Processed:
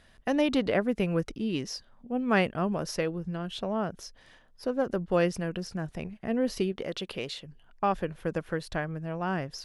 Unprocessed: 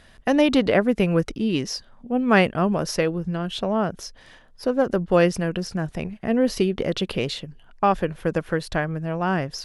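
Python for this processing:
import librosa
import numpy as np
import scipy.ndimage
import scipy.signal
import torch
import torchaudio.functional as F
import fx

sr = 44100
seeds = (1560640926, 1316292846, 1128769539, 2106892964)

y = fx.low_shelf(x, sr, hz=270.0, db=-8.5, at=(6.72, 7.45))
y = y * 10.0 ** (-7.5 / 20.0)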